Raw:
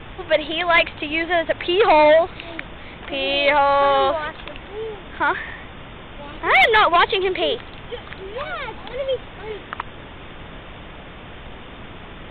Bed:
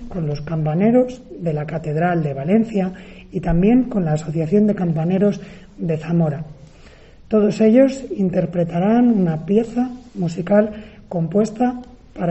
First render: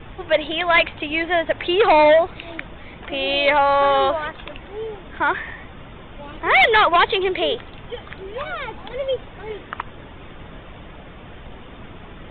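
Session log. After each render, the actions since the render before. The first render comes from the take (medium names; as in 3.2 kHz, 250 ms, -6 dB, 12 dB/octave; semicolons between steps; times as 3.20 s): noise reduction 6 dB, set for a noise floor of -38 dBFS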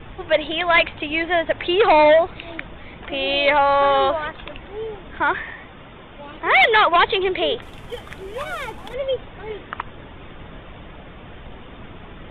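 5.44–6.96 s: bass shelf 150 Hz -6.5 dB; 7.62–8.94 s: CVSD coder 64 kbps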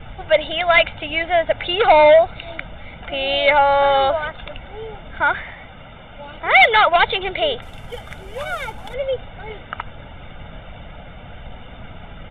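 comb 1.4 ms, depth 61%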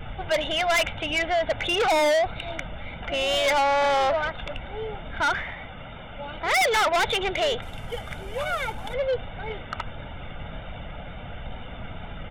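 wow and flutter 21 cents; saturation -19 dBFS, distortion -6 dB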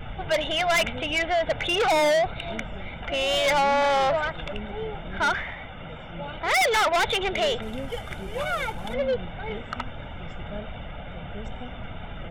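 add bed -24 dB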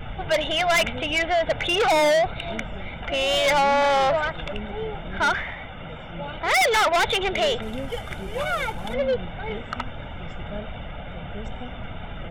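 trim +2 dB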